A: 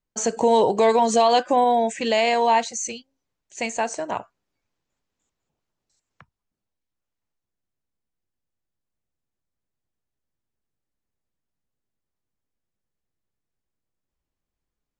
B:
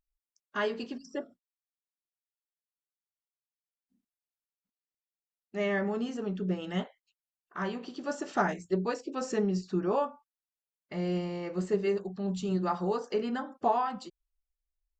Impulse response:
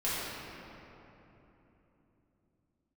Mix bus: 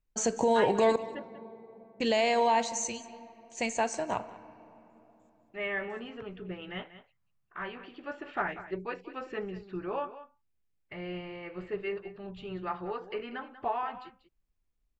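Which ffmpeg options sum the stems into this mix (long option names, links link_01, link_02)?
-filter_complex "[0:a]alimiter=limit=-12dB:level=0:latency=1,volume=-5.5dB,asplit=3[link_01][link_02][link_03];[link_01]atrim=end=0.96,asetpts=PTS-STARTPTS,afade=type=out:start_time=0.956:duration=0.004:curve=hsin[link_04];[link_02]atrim=start=0.96:end=2,asetpts=PTS-STARTPTS,volume=0[link_05];[link_03]atrim=start=2,asetpts=PTS-STARTPTS,afade=type=in:duration=0.004:curve=hsin[link_06];[link_04][link_05][link_06]concat=n=3:v=0:a=1,asplit=3[link_07][link_08][link_09];[link_08]volume=-23dB[link_10];[link_09]volume=-18.5dB[link_11];[1:a]firequalizer=gain_entry='entry(110,0);entry(200,-15);entry(290,-6);entry(2400,6);entry(5900,-25)':delay=0.05:min_phase=1,volume=-2dB,asplit=2[link_12][link_13];[link_13]volume=-14dB[link_14];[2:a]atrim=start_sample=2205[link_15];[link_10][link_15]afir=irnorm=-1:irlink=0[link_16];[link_11][link_14]amix=inputs=2:normalize=0,aecho=0:1:190:1[link_17];[link_07][link_12][link_16][link_17]amix=inputs=4:normalize=0,lowshelf=frequency=120:gain=9.5"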